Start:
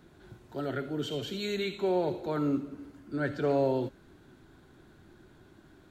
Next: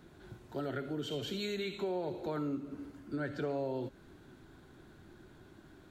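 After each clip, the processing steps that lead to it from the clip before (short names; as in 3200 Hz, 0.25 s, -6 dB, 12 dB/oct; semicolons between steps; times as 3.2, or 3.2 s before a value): compressor 4:1, threshold -34 dBFS, peak gain reduction 10 dB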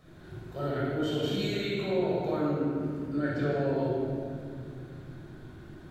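reverb RT60 2.2 s, pre-delay 20 ms, DRR -6.5 dB; gain -3 dB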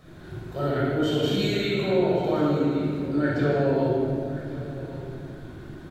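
echo 1.118 s -16 dB; gain +6 dB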